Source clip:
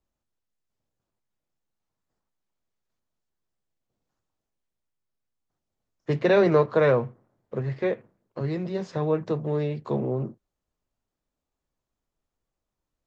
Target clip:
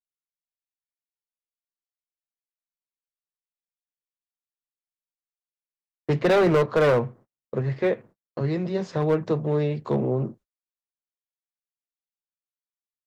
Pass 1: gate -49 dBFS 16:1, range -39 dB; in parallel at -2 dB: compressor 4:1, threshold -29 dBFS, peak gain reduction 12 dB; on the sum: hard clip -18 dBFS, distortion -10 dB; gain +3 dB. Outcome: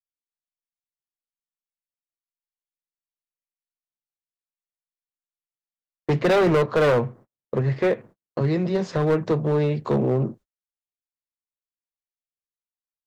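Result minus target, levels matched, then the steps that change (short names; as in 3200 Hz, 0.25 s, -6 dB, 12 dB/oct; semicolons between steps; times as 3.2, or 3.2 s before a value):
compressor: peak gain reduction +12 dB
remove: compressor 4:1, threshold -29 dBFS, peak gain reduction 12 dB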